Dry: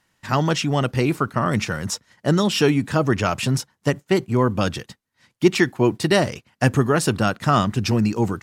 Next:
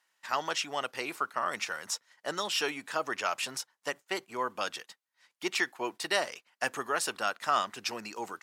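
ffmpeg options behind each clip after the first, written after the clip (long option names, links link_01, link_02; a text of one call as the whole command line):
ffmpeg -i in.wav -af "highpass=730,volume=-6.5dB" out.wav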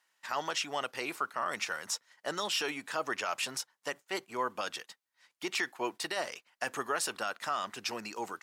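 ffmpeg -i in.wav -af "alimiter=limit=-21.5dB:level=0:latency=1:release=27" out.wav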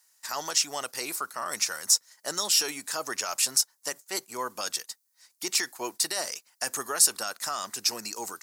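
ffmpeg -i in.wav -af "aexciter=amount=4.2:drive=7.6:freq=4400" out.wav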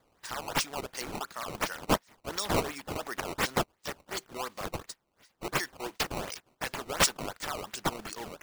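ffmpeg -i in.wav -af "acrusher=samples=15:mix=1:aa=0.000001:lfo=1:lforange=24:lforate=2.8,volume=-4dB" out.wav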